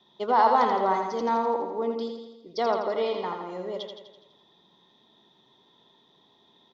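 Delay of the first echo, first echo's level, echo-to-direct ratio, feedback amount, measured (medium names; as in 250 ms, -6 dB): 83 ms, -5.5 dB, -4.0 dB, 57%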